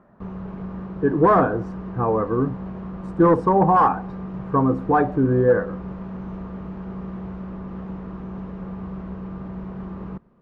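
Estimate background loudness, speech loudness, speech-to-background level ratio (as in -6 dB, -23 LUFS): -34.0 LUFS, -19.5 LUFS, 14.5 dB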